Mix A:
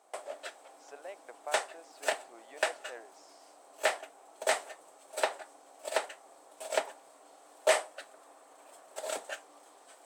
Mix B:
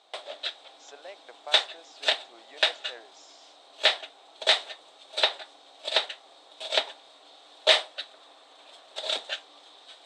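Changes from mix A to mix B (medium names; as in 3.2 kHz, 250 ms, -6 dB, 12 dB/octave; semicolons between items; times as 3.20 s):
background: add resonant low-pass 3.7 kHz, resonance Q 6.9; master: add treble shelf 3.1 kHz +9.5 dB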